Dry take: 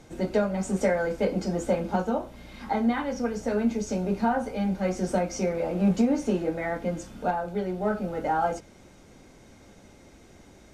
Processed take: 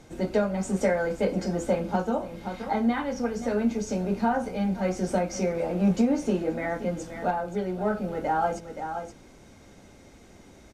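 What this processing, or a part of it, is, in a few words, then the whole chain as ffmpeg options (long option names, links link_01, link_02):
ducked delay: -filter_complex "[0:a]asplit=3[link_01][link_02][link_03];[link_02]adelay=525,volume=-8dB[link_04];[link_03]apad=whole_len=496482[link_05];[link_04][link_05]sidechaincompress=threshold=-37dB:ratio=8:attack=16:release=165[link_06];[link_01][link_06]amix=inputs=2:normalize=0"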